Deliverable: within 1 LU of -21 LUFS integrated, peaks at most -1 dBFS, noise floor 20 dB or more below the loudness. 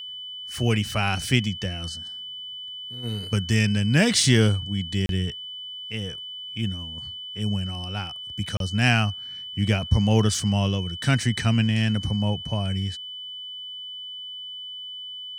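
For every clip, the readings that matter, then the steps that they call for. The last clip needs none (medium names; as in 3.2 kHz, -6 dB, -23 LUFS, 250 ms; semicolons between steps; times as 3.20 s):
dropouts 2; longest dropout 32 ms; steady tone 3 kHz; tone level -34 dBFS; loudness -25.5 LUFS; peak level -5.0 dBFS; loudness target -21.0 LUFS
-> interpolate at 5.06/8.57 s, 32 ms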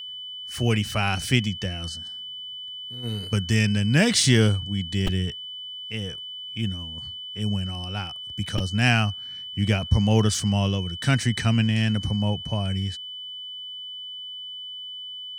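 dropouts 0; steady tone 3 kHz; tone level -34 dBFS
-> band-stop 3 kHz, Q 30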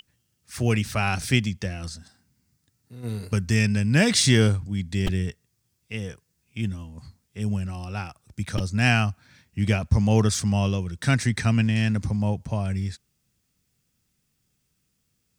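steady tone not found; loudness -24.0 LUFS; peak level -6.0 dBFS; loudness target -21.0 LUFS
-> trim +3 dB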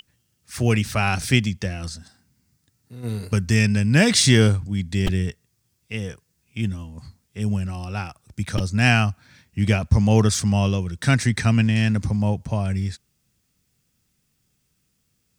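loudness -21.0 LUFS; peak level -3.0 dBFS; noise floor -70 dBFS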